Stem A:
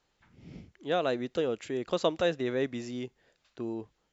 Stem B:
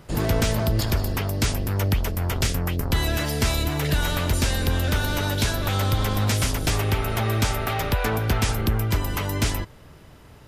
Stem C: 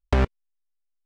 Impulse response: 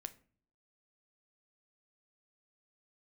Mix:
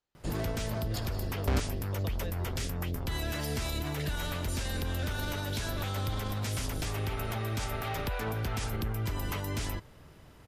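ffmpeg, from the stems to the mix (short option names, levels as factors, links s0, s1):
-filter_complex "[0:a]volume=0.178[s0];[1:a]adelay=150,volume=0.473[s1];[2:a]asoftclip=type=tanh:threshold=0.119,adelay=1350,volume=0.596[s2];[s0][s1]amix=inputs=2:normalize=0,alimiter=level_in=1.06:limit=0.0631:level=0:latency=1:release=55,volume=0.944,volume=1[s3];[s2][s3]amix=inputs=2:normalize=0"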